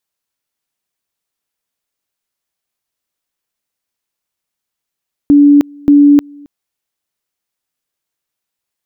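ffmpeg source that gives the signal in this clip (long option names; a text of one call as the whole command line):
ffmpeg -f lavfi -i "aevalsrc='pow(10,(-2.5-29*gte(mod(t,0.58),0.31))/20)*sin(2*PI*288*t)':duration=1.16:sample_rate=44100" out.wav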